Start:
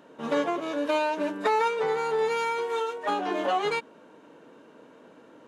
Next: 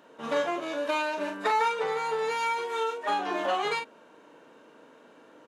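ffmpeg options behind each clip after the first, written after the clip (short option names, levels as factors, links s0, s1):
-filter_complex "[0:a]lowshelf=f=380:g=-8.5,asplit=2[s0][s1];[s1]adelay=40,volume=0.501[s2];[s0][s2]amix=inputs=2:normalize=0"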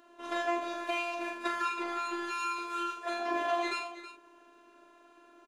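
-af "afftfilt=real='hypot(re,im)*cos(PI*b)':imag='0':win_size=512:overlap=0.75,aecho=1:1:83|323:0.316|0.224"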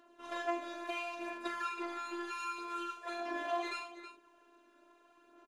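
-af "aphaser=in_gain=1:out_gain=1:delay=3.5:decay=0.35:speed=0.74:type=sinusoidal,volume=0.473"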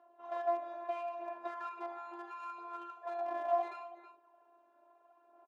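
-filter_complex "[0:a]asplit=2[s0][s1];[s1]acrusher=bits=4:mix=0:aa=0.000001,volume=0.447[s2];[s0][s2]amix=inputs=2:normalize=0,asoftclip=type=tanh:threshold=0.075,bandpass=f=760:t=q:w=3.5:csg=0,volume=2.11"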